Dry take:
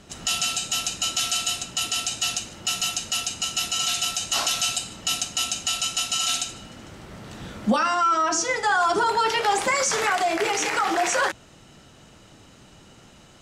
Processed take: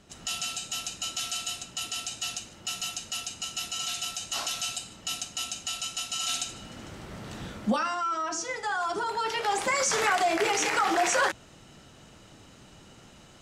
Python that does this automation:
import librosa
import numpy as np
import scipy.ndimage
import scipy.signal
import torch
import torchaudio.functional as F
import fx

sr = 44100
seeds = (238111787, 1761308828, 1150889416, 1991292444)

y = fx.gain(x, sr, db=fx.line((6.1, -8.0), (6.79, -0.5), (7.37, -0.5), (8.01, -9.0), (9.09, -9.0), (10.01, -2.0)))